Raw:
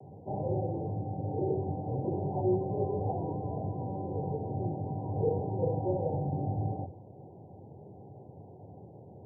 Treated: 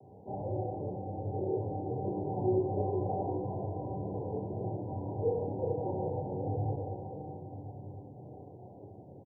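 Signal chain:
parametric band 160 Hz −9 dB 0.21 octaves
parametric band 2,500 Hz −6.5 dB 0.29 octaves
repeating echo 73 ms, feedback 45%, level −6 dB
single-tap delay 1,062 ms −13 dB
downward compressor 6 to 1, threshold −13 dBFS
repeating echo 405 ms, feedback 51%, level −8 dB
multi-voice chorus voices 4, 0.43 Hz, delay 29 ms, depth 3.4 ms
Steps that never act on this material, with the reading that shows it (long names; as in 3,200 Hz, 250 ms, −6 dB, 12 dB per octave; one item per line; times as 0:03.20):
parametric band 2,500 Hz: nothing at its input above 1,000 Hz
downward compressor, threshold −13 dBFS: peak of its input −17.0 dBFS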